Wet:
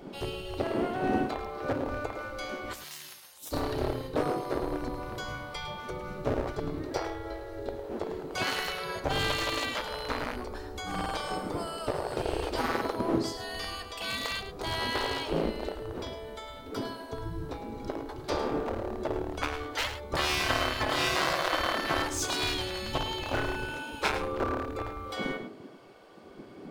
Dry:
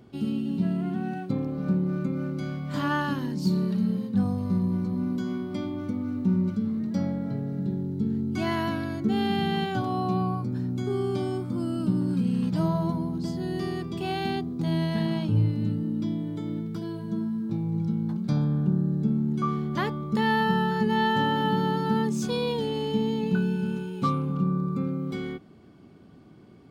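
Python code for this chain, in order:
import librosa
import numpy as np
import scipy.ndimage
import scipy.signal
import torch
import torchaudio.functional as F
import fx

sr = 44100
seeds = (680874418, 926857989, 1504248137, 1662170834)

y = np.minimum(x, 2.0 * 10.0 ** (-21.5 / 20.0) - x)
y = fx.dmg_wind(y, sr, seeds[0], corner_hz=99.0, level_db=-31.0)
y = fx.differentiator(y, sr, at=(2.73, 3.53))
y = fx.spec_gate(y, sr, threshold_db=-15, keep='weak')
y = y + 10.0 ** (-11.0 / 20.0) * np.pad(y, (int(106 * sr / 1000.0), 0))[:len(y)]
y = y * librosa.db_to_amplitude(7.0)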